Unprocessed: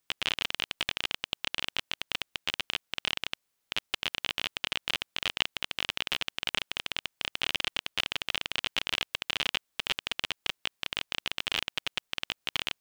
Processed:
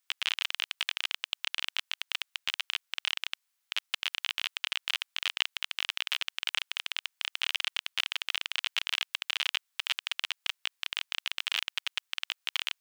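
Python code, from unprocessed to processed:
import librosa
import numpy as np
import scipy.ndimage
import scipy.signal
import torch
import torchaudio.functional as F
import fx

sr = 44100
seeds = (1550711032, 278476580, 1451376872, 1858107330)

y = scipy.signal.sosfilt(scipy.signal.butter(2, 1100.0, 'highpass', fs=sr, output='sos'), x)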